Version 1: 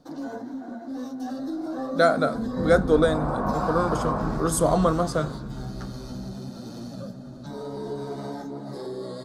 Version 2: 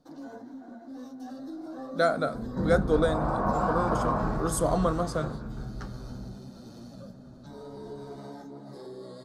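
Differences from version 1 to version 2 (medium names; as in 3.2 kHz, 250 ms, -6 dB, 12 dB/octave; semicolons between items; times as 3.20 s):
speech -5.0 dB; first sound -8.5 dB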